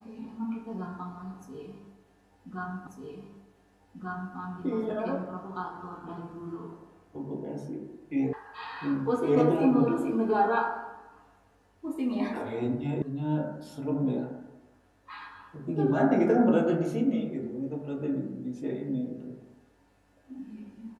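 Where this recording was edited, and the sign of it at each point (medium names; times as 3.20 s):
2.87 s: repeat of the last 1.49 s
8.33 s: sound stops dead
13.02 s: sound stops dead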